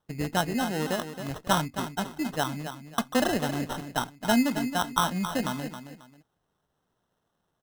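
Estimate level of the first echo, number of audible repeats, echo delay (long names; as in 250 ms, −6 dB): −10.0 dB, 2, 270 ms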